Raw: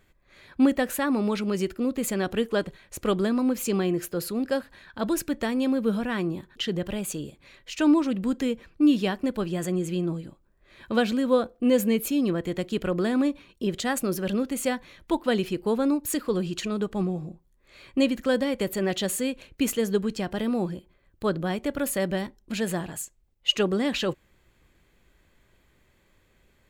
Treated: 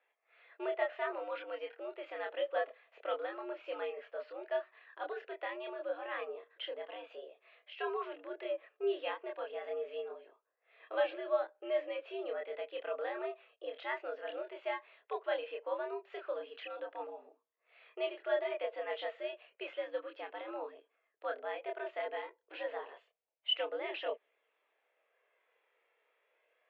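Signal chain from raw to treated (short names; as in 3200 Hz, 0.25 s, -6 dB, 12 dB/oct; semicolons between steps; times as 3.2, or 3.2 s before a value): mistuned SSB +100 Hz 370–3000 Hz; chorus voices 4, 0.14 Hz, delay 27 ms, depth 1.1 ms; gain -6 dB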